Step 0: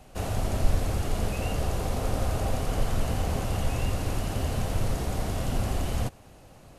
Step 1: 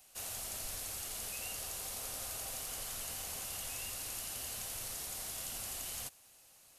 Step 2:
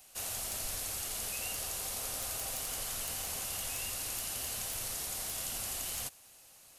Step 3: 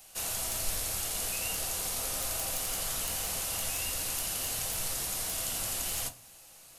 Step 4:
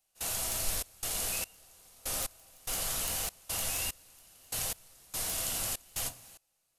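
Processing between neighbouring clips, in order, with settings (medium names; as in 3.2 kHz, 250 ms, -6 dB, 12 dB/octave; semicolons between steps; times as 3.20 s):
pre-emphasis filter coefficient 0.97; trim +2 dB
integer overflow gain 29.5 dB; trim +4 dB
simulated room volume 150 m³, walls furnished, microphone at 0.69 m; trim +3.5 dB
trance gate ".xxx.xx...x." 73 bpm -24 dB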